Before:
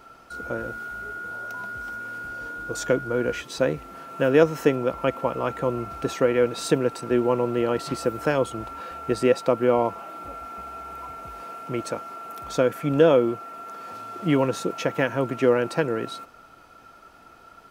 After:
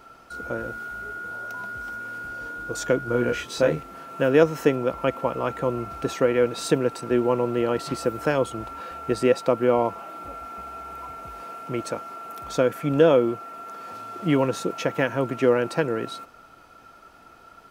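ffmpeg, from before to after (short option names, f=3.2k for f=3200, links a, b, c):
-filter_complex "[0:a]asettb=1/sr,asplit=3[a][b][c];[a]atrim=end=3.054[d];[b]atrim=start=3.05:end=3.83,asetpts=PTS-STARTPTS,afade=t=in:d=0.004:c=qsin,afade=t=out:st=0.776:d=0.004:c=qsin,asplit=2[e][f];[f]adelay=25,volume=-3dB[g];[e][g]amix=inputs=2:normalize=0,atrim=end_sample=34398[h];[c]atrim=start=3.826[i];[d][h]acrossfade=d=0.004:c1=hsin:c2=qsin[j];[j][i]acrossfade=d=0.004:c1=qsin:c2=hsin"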